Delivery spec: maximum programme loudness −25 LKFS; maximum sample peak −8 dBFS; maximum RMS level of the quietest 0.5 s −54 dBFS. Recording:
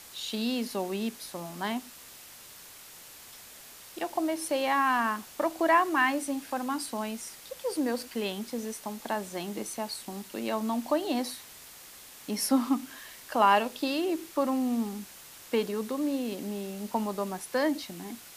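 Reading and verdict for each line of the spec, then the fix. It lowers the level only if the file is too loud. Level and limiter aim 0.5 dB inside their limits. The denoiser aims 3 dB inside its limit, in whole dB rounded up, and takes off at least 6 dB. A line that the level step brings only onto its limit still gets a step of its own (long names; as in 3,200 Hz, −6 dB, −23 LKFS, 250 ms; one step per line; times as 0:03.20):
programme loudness −30.5 LKFS: in spec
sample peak −10.5 dBFS: in spec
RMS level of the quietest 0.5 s −49 dBFS: out of spec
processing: broadband denoise 8 dB, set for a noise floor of −49 dBFS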